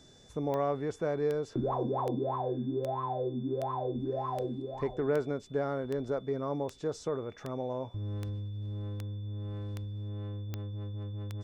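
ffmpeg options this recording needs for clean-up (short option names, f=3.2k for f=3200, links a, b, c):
-af "adeclick=t=4,bandreject=f=3.5k:w=30"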